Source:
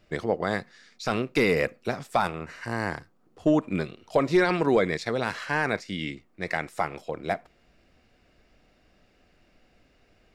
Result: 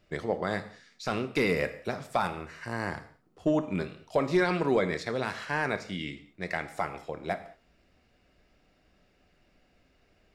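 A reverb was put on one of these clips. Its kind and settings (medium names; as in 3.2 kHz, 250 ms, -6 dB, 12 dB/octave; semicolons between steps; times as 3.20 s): gated-style reverb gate 240 ms falling, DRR 9.5 dB; trim -4 dB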